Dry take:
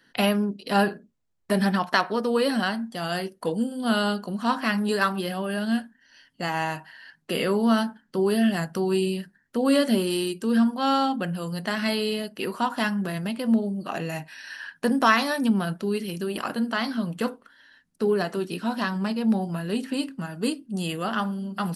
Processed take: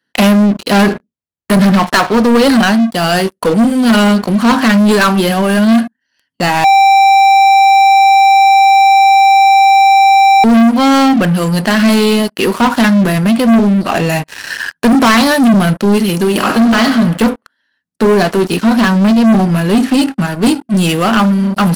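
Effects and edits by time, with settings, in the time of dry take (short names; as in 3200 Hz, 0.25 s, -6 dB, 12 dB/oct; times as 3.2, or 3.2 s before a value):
6.64–10.44 bleep 783 Hz -12.5 dBFS
16.29–16.84 reverb throw, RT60 0.95 s, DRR 5.5 dB
whole clip: dynamic EQ 230 Hz, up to +6 dB, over -34 dBFS, Q 2.8; HPF 57 Hz 24 dB/oct; sample leveller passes 5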